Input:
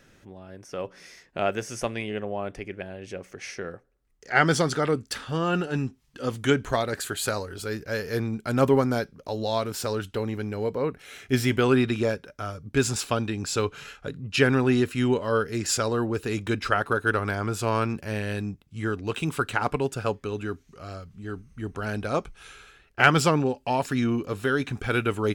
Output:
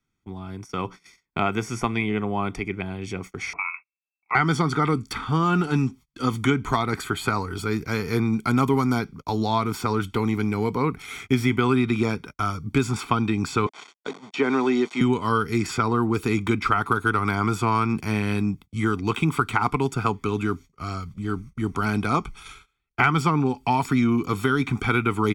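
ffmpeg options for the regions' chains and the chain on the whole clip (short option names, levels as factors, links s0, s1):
-filter_complex "[0:a]asettb=1/sr,asplit=3[s0][s1][s2];[s0]atrim=end=3.534[s3];[s1]atrim=start=3.53:end=4.35,asetpts=PTS-STARTPTS,afade=t=in:d=0.004:c=qsin,afade=t=out:st=0.816:d=0.004:c=qsin,equalizer=f=750:w=0.34:g=-5,lowpass=f=2300:t=q:w=0.5098,lowpass=f=2300:t=q:w=0.6013,lowpass=f=2300:t=q:w=0.9,lowpass=f=2300:t=q:w=2.563,afreqshift=-2700[s4];[s2]atrim=start=4.346[s5];[s3][s4]acrossfade=d=0.004:c1=hsin:c2=qsin[s6];[s6][s5]acrossfade=d=0.004:c1=qsin:c2=hsin,asettb=1/sr,asplit=3[s7][s8][s9];[s7]atrim=end=13.664[s10];[s8]atrim=start=13.66:end=15.01,asetpts=PTS-STARTPTS,afade=t=in:d=0.004:c=qsin,afade=t=out:st=1.346:d=0.004:c=qsin,deesser=0.9,aeval=exprs='val(0)*gte(abs(val(0)),0.0126)':c=same,highpass=f=270:w=0.5412,highpass=f=270:w=1.3066,equalizer=f=300:t=q:w=4:g=-5,equalizer=f=600:t=q:w=4:g=6,equalizer=f=1300:t=q:w=4:g=-5,equalizer=f=2500:t=q:w=4:g=-4,equalizer=f=5000:t=q:w=4:g=-4,lowpass=f=6600:w=0.5412,lowpass=f=6600:w=1.3066[s11];[s9]atrim=start=15.006[s12];[s10][s11]acrossfade=d=0.004:c1=hsin:c2=qsin[s13];[s13][s12]acrossfade=d=0.004:c1=qsin:c2=hsin,aecho=1:1:0.9:0.86,agate=range=0.0282:threshold=0.00708:ratio=16:detection=peak,acrossover=split=140|2600[s14][s15][s16];[s14]acompressor=threshold=0.00794:ratio=4[s17];[s15]acompressor=threshold=0.0562:ratio=4[s18];[s16]acompressor=threshold=0.00447:ratio=4[s19];[s17][s18][s19]amix=inputs=3:normalize=0,volume=2.11"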